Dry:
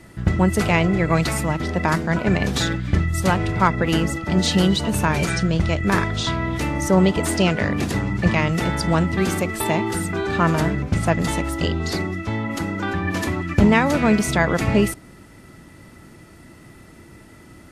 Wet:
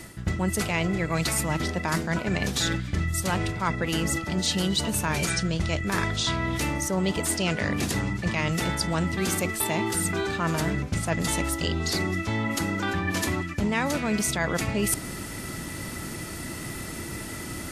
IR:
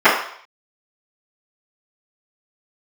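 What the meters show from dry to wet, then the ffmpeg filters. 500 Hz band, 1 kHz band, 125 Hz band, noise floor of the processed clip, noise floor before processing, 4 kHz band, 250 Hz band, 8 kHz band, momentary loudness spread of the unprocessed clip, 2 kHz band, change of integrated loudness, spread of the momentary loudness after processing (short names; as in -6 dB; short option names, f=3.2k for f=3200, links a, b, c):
-7.5 dB, -7.0 dB, -7.0 dB, -36 dBFS, -46 dBFS, -1.5 dB, -7.5 dB, +2.0 dB, 6 LU, -4.5 dB, -6.5 dB, 9 LU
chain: -af "highshelf=f=3.3k:g=10.5,areverse,acompressor=threshold=-34dB:ratio=5,areverse,volume=8.5dB"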